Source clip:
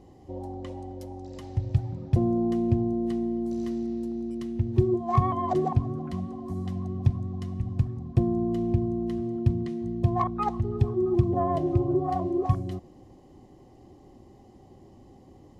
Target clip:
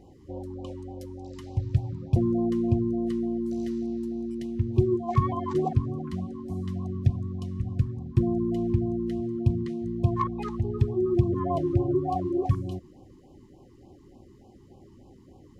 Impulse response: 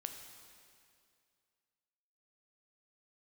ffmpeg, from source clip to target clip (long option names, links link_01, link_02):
-af "afftfilt=real='re*(1-between(b*sr/1024,580*pow(1700/580,0.5+0.5*sin(2*PI*3.4*pts/sr))/1.41,580*pow(1700/580,0.5+0.5*sin(2*PI*3.4*pts/sr))*1.41))':imag='im*(1-between(b*sr/1024,580*pow(1700/580,0.5+0.5*sin(2*PI*3.4*pts/sr))/1.41,580*pow(1700/580,0.5+0.5*sin(2*PI*3.4*pts/sr))*1.41))':win_size=1024:overlap=0.75"